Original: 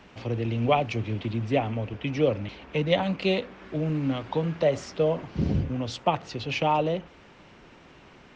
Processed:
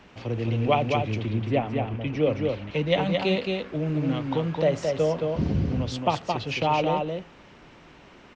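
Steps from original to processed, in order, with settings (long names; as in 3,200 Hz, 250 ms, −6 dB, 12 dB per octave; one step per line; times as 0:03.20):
0:01.26–0:02.30: high-shelf EQ 4,500 Hz −9 dB
single-tap delay 220 ms −4 dB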